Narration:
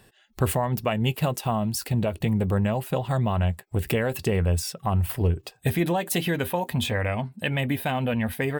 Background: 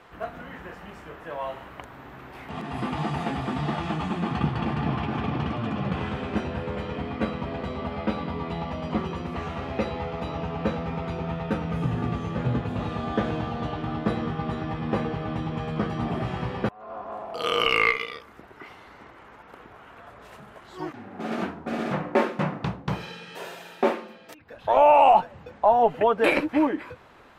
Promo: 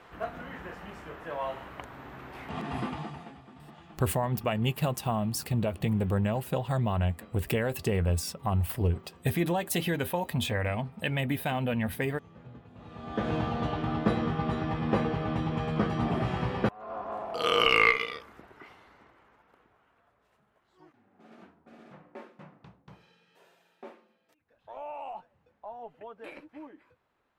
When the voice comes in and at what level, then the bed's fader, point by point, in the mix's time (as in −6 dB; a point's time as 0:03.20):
3.60 s, −4.0 dB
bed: 0:02.77 −1.5 dB
0:03.44 −23 dB
0:12.72 −23 dB
0:13.34 −0.5 dB
0:18.08 −0.5 dB
0:20.22 −24 dB